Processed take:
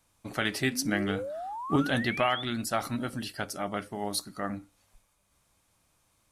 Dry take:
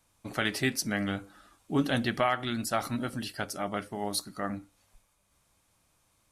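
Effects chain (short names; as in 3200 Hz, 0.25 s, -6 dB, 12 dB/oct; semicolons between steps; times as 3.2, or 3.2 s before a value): 0.69–2.43 painted sound rise 220–3600 Hz -37 dBFS; 0.85–1.76 transient shaper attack +8 dB, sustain +4 dB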